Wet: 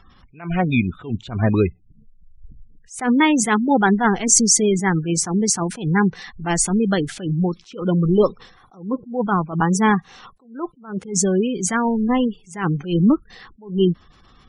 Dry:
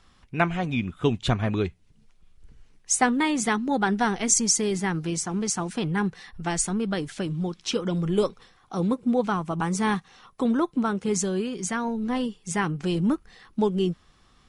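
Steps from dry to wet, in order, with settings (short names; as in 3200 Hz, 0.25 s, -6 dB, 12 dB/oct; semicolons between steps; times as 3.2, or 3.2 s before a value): spectral gate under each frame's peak -25 dB strong; attack slew limiter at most 150 dB/s; gain +8.5 dB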